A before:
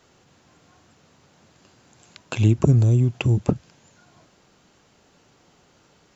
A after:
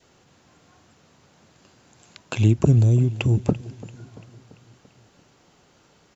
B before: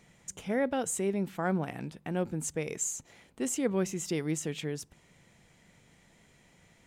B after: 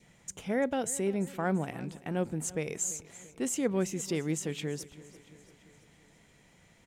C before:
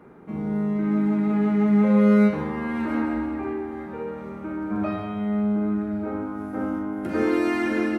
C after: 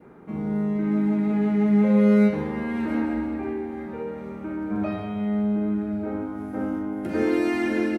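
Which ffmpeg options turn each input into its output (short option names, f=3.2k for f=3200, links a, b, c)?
-af "adynamicequalizer=threshold=0.00355:dfrequency=1200:dqfactor=2.4:tfrequency=1200:tqfactor=2.4:attack=5:release=100:ratio=0.375:range=3.5:mode=cutabove:tftype=bell,aecho=1:1:340|680|1020|1360|1700:0.112|0.0628|0.0352|0.0197|0.011"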